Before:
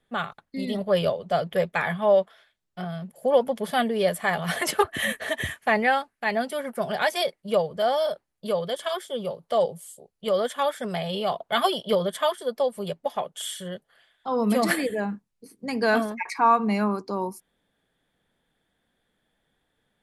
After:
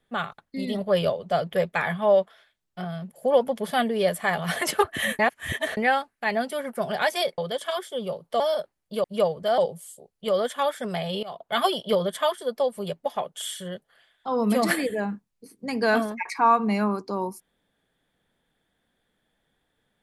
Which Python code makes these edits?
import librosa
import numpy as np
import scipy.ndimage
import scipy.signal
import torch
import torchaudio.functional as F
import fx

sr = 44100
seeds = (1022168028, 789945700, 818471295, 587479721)

y = fx.edit(x, sr, fx.reverse_span(start_s=5.19, length_s=0.58),
    fx.swap(start_s=7.38, length_s=0.54, other_s=8.56, other_length_s=1.02),
    fx.fade_in_from(start_s=11.23, length_s=0.39, floor_db=-17.5), tone=tone)